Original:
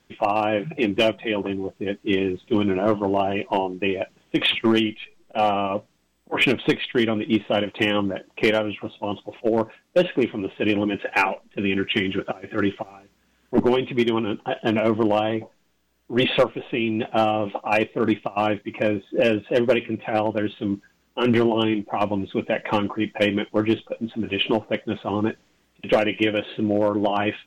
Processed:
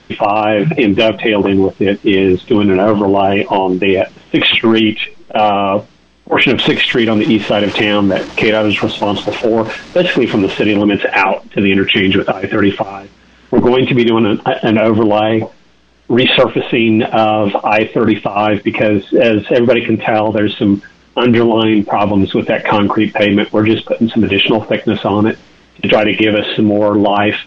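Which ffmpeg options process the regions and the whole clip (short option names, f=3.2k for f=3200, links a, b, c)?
-filter_complex "[0:a]asettb=1/sr,asplit=3[a][b][c];[a]atrim=end=6.584[d];[b]atrim=start=6.58:end=10.82,asetpts=PTS-STARTPTS,afade=t=in:d=0.004:c=qsin,afade=t=out:st=4.236:d=0.004:c=qsin,aeval=exprs='val(0)+0.5*0.0141*sgn(val(0))':c=same,acompressor=threshold=-26dB:ratio=4:attack=3.2:release=140:knee=1:detection=peak,agate=range=-33dB:threshold=-38dB:ratio=3:release=100:detection=peak[e];[c]atrim=start=10.816[f];[d][e]acrossfade=d=0.004:c1=hsin:c2=qsin[g];[g][f]acrossfade=d=0.004:c1=qsin:c2=hsin,lowpass=f=5.6k:w=0.5412,lowpass=f=5.6k:w=1.3066,alimiter=level_in=20dB:limit=-1dB:release=50:level=0:latency=1,volume=-1dB"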